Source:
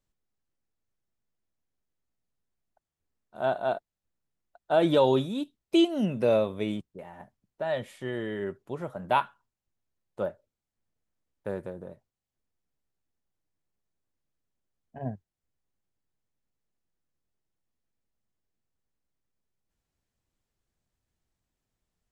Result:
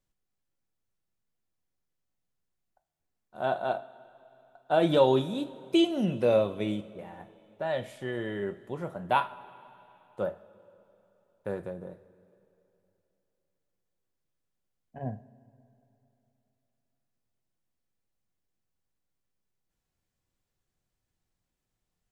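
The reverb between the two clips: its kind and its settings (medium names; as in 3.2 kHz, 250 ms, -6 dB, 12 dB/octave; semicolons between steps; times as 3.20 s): two-slope reverb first 0.33 s, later 3.1 s, from -18 dB, DRR 8 dB; trim -1 dB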